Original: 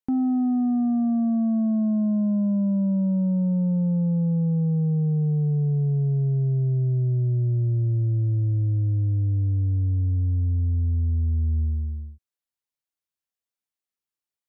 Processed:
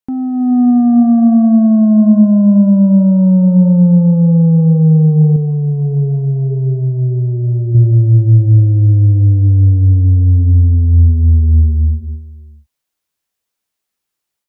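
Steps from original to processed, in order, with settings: level rider gain up to 10 dB; gated-style reverb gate 500 ms rising, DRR 10 dB; 5.36–7.75 s: flange 1.6 Hz, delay 2 ms, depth 1.7 ms, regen +69%; trim +3.5 dB

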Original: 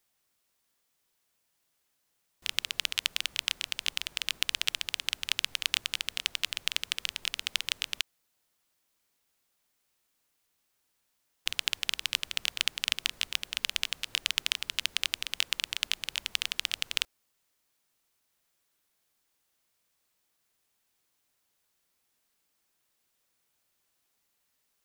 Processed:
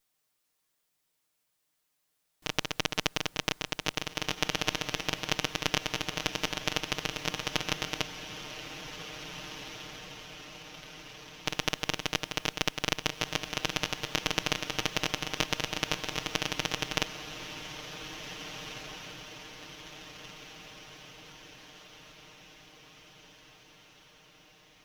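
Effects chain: comb filter that takes the minimum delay 6.5 ms; echo that smears into a reverb 1884 ms, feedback 55%, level -9.5 dB

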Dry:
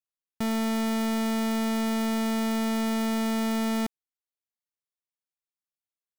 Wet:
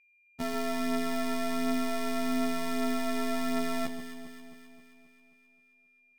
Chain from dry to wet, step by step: treble shelf 8.7 kHz -6.5 dB; waveshaping leveller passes 3; robot voice 84.3 Hz; flange 0.38 Hz, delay 6.2 ms, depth 7.9 ms, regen +39%; whistle 2.4 kHz -67 dBFS; on a send: echo whose repeats swap between lows and highs 133 ms, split 1.2 kHz, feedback 74%, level -7 dB; on the sum: trim +3.5 dB; Vorbis 192 kbps 48 kHz

